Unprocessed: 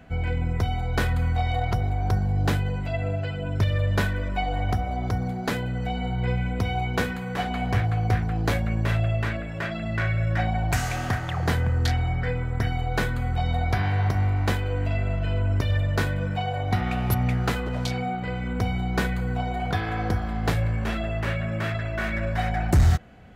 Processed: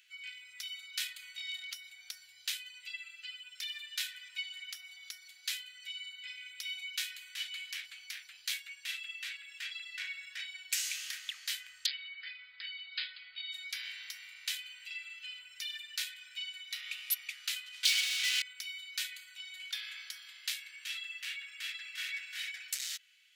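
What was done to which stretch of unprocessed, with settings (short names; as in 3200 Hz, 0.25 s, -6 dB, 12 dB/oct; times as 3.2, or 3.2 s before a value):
11.86–13.52 brick-wall FIR low-pass 5100 Hz
17.83–18.42 overdrive pedal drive 40 dB, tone 2900 Hz, clips at -14.5 dBFS
21.48–22.16 echo throw 0.35 s, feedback 15%, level -4.5 dB
whole clip: inverse Chebyshev high-pass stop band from 610 Hz, stop band 70 dB; gain +2 dB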